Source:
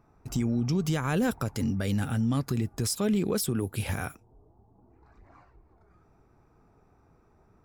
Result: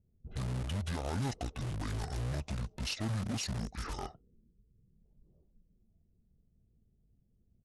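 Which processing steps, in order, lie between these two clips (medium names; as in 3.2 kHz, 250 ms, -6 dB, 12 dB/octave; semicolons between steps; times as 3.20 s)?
level-controlled noise filter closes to 310 Hz, open at -26 dBFS; bass shelf 270 Hz -4 dB; in parallel at -5 dB: integer overflow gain 29 dB; on the sum: pitch shift -11 st; trim -6.5 dB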